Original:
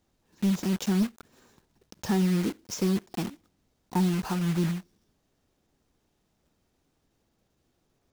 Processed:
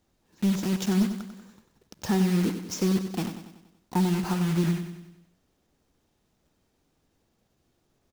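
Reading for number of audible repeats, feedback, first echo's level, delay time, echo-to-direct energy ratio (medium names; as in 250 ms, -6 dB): 5, 52%, -9.5 dB, 95 ms, -8.0 dB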